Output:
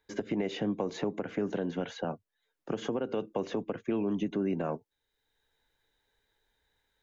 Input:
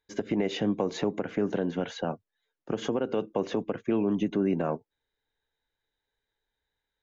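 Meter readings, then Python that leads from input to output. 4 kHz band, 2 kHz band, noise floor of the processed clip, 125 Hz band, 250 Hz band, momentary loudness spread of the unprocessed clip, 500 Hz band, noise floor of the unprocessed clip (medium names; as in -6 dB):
-4.5 dB, -3.0 dB, -84 dBFS, -4.0 dB, -4.0 dB, 7 LU, -4.0 dB, under -85 dBFS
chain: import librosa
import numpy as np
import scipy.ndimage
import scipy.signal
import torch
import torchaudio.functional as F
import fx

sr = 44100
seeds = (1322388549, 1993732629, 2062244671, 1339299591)

y = fx.band_squash(x, sr, depth_pct=40)
y = F.gain(torch.from_numpy(y), -4.0).numpy()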